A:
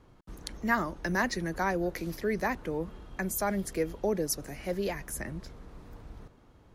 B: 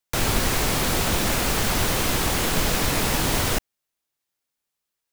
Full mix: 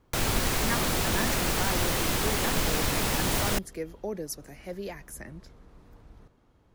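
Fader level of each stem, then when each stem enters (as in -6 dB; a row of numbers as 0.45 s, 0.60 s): -5.0 dB, -4.5 dB; 0.00 s, 0.00 s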